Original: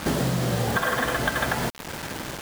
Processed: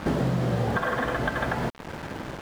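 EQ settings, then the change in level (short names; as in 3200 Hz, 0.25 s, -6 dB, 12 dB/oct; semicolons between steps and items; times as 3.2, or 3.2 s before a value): LPF 1400 Hz 6 dB/oct; 0.0 dB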